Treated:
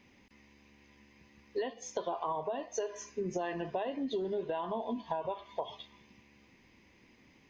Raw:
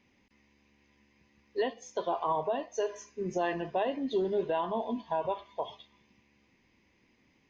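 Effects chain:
downward compressor 6 to 1, threshold −38 dBFS, peak gain reduction 12.5 dB
level +5.5 dB

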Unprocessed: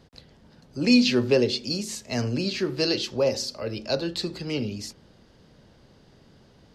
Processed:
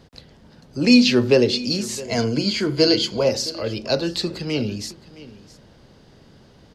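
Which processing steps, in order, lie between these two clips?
0:02.00–0:03.25: EQ curve with evenly spaced ripples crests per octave 1.8, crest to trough 11 dB
on a send: single-tap delay 665 ms −18.5 dB
on the sum: level +5 dB

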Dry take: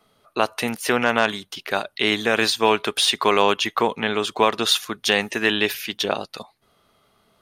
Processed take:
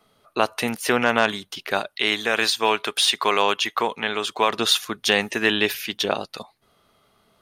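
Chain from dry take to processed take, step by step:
0:01.87–0:04.50: low-shelf EQ 420 Hz −9 dB

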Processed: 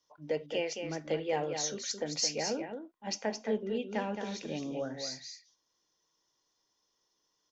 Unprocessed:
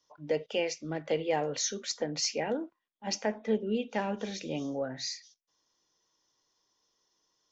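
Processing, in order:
0:01.91–0:02.46: high-shelf EQ 6,200 Hz +7.5 dB
single-tap delay 218 ms −7 dB
level −3 dB

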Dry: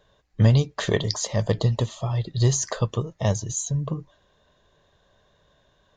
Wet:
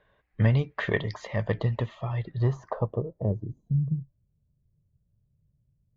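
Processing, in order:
harmonic generator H 8 −40 dB, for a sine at −5.5 dBFS
low-pass filter sweep 2,100 Hz → 130 Hz, 0:02.20–0:04.00
level −5 dB

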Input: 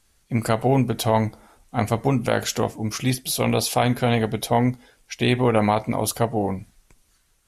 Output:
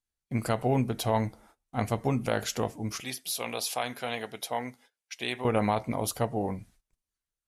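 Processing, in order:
0:03.00–0:05.45: high-pass filter 890 Hz 6 dB per octave
noise gate −49 dBFS, range −21 dB
level −7 dB

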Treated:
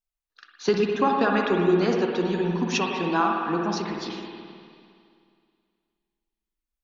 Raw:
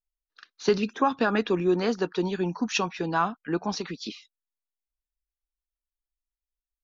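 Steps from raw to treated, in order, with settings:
on a send: feedback echo with a band-pass in the loop 61 ms, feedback 76%, band-pass 1,100 Hz, level −14 dB
on the sum: spring reverb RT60 2.3 s, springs 52/58 ms, chirp 65 ms, DRR 0.5 dB

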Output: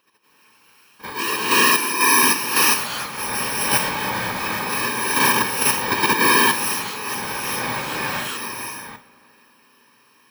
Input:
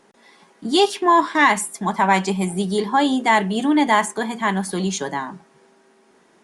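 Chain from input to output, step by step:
samples in bit-reversed order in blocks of 64 samples
phase-vocoder stretch with locked phases 1.6×
three-way crossover with the lows and the highs turned down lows −19 dB, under 580 Hz, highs −16 dB, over 3,900 Hz
random phases in short frames
on a send: delay with a low-pass on its return 81 ms, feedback 82%, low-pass 1,800 Hz, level −19.5 dB
on the sum: reverb whose tail is shaped and stops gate 430 ms rising, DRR −6.5 dB
in parallel at 0 dB: output level in coarse steps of 22 dB

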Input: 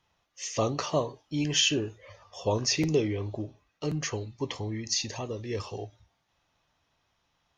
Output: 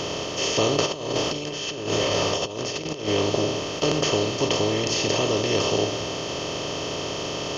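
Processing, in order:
compressor on every frequency bin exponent 0.2
high-shelf EQ 6,800 Hz −7 dB
0:00.86–0:03.08: compressor whose output falls as the input rises −24 dBFS, ratio −0.5
level −2 dB

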